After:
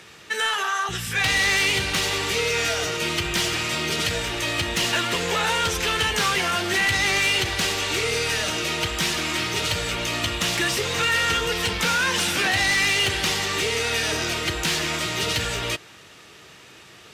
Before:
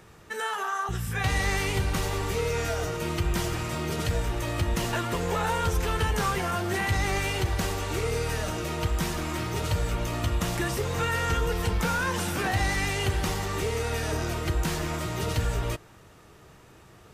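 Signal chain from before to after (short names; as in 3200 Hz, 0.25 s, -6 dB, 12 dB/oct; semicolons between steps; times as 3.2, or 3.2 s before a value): weighting filter D; sine folder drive 7 dB, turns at -8 dBFS; gain -7.5 dB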